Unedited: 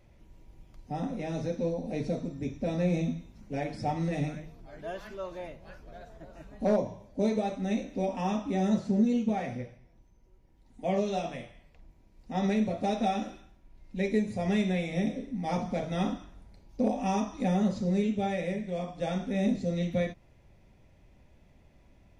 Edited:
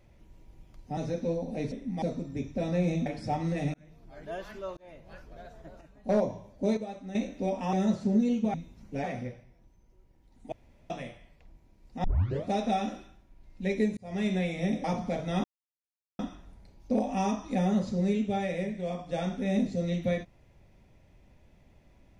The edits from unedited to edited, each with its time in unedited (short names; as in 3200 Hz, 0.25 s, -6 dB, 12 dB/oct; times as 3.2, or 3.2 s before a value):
0.97–1.33 cut
3.12–3.62 move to 9.38
4.3–4.72 fade in
5.33–5.66 fade in
6.37–6.65 gain -8 dB
7.33–7.71 gain -8.5 dB
8.29–8.57 cut
10.86–11.24 room tone
12.38 tape start 0.41 s
14.31–14.66 fade in linear
15.18–15.48 move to 2.08
16.08 insert silence 0.75 s